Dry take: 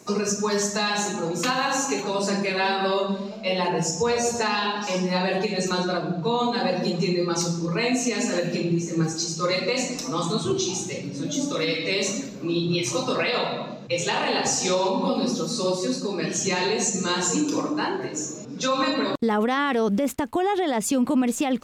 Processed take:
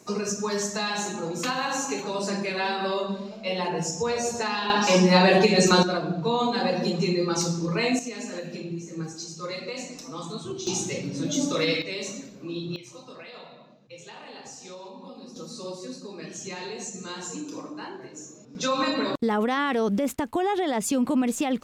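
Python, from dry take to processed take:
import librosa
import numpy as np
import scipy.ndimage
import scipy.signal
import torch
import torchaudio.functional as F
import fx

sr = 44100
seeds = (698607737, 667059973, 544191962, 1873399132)

y = fx.gain(x, sr, db=fx.steps((0.0, -4.0), (4.7, 6.5), (5.83, -1.0), (7.99, -10.0), (10.67, 0.5), (11.82, -8.5), (12.76, -19.5), (15.36, -12.0), (18.55, -2.0)))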